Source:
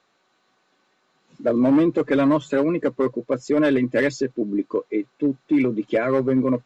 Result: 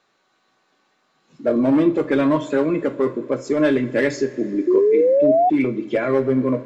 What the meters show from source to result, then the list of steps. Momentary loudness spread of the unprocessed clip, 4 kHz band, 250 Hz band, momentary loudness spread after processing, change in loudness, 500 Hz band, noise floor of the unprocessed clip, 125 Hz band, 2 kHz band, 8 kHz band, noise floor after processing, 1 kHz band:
7 LU, +1.0 dB, +0.5 dB, 8 LU, +2.5 dB, +4.5 dB, -67 dBFS, +1.0 dB, +1.0 dB, no reading, -66 dBFS, +6.5 dB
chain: two-slope reverb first 0.32 s, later 3.9 s, from -20 dB, DRR 6.5 dB; painted sound rise, 4.67–5.50 s, 350–750 Hz -15 dBFS

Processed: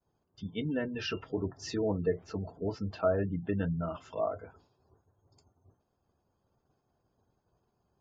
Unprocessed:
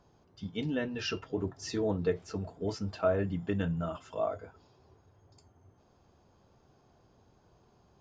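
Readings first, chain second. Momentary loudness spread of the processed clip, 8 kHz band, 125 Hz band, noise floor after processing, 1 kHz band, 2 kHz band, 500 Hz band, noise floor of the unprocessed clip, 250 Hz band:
9 LU, no reading, 0.0 dB, -79 dBFS, -0.5 dB, -1.0 dB, 0.0 dB, -66 dBFS, 0.0 dB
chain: expander -55 dBFS; spectral gate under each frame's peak -30 dB strong; low-pass that closes with the level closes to 2.4 kHz, closed at -28.5 dBFS

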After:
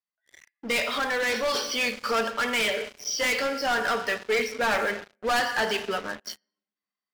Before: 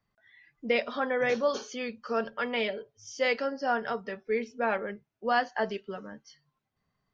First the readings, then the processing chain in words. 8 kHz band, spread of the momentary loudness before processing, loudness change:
no reading, 14 LU, +4.5 dB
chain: brick-wall FIR band-pass 180–6000 Hz; tilt shelf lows -7.5 dB; simulated room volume 360 m³, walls mixed, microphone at 0.39 m; waveshaping leveller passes 5; gain riding within 3 dB 0.5 s; trim -8.5 dB

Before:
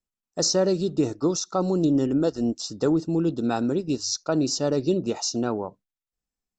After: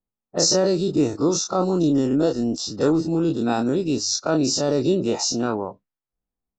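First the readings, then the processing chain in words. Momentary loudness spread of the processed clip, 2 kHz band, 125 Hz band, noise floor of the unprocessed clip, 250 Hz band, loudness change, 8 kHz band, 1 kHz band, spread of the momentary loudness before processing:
5 LU, +4.5 dB, +2.0 dB, under -85 dBFS, +2.5 dB, +3.0 dB, +4.5 dB, +4.0 dB, 6 LU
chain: every event in the spectrogram widened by 60 ms; level-controlled noise filter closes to 1 kHz, open at -20.5 dBFS

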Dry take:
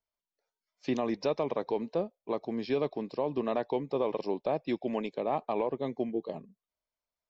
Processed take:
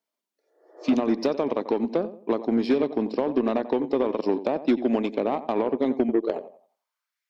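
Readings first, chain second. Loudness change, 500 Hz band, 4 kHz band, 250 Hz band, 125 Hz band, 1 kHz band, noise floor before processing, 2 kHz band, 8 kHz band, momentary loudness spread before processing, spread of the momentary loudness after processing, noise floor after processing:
+7.5 dB, +6.0 dB, +5.0 dB, +10.5 dB, +2.0 dB, +4.5 dB, under -85 dBFS, +6.0 dB, no reading, 4 LU, 4 LU, under -85 dBFS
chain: compression, threshold -31 dBFS, peak gain reduction 7.5 dB; spectral replace 0.44–0.92 s, 300–2000 Hz both; on a send: filtered feedback delay 90 ms, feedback 34%, low-pass 2.1 kHz, level -11 dB; on the sum: high-pass sweep 250 Hz -> 1.9 kHz, 6.09–7.22 s; Chebyshev shaper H 5 -20 dB, 7 -20 dB, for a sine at -18 dBFS; trim +7.5 dB

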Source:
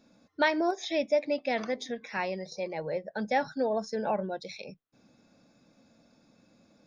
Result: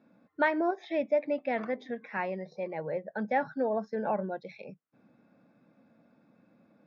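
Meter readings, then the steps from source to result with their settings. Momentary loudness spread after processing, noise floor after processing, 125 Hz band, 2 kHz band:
10 LU, -68 dBFS, 0.0 dB, -1.5 dB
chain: Chebyshev band-pass 140–1800 Hz, order 2

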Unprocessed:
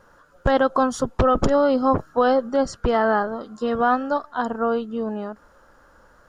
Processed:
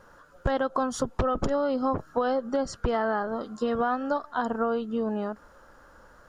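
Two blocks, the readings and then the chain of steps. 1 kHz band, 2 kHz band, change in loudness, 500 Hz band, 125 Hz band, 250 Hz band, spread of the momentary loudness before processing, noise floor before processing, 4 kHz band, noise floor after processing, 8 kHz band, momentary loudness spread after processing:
-7.0 dB, -7.0 dB, -7.0 dB, -6.5 dB, -6.0 dB, -6.0 dB, 9 LU, -55 dBFS, -6.0 dB, -55 dBFS, -3.5 dB, 4 LU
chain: compression, threshold -23 dBFS, peak gain reduction 9 dB

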